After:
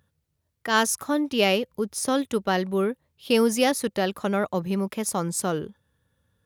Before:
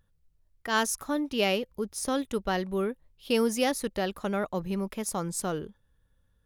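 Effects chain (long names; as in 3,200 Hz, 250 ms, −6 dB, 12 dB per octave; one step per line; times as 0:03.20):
high-pass filter 80 Hz 24 dB per octave
level +5 dB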